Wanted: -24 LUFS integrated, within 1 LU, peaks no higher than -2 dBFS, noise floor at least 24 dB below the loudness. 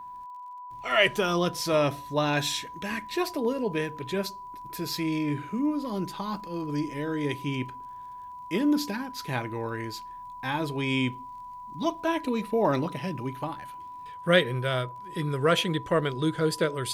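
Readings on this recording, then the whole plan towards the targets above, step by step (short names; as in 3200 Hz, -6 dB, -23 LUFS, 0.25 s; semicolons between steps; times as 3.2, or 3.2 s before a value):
ticks 24/s; steady tone 990 Hz; tone level -39 dBFS; loudness -28.5 LUFS; peak -7.0 dBFS; loudness target -24.0 LUFS
-> de-click; notch 990 Hz, Q 30; gain +4.5 dB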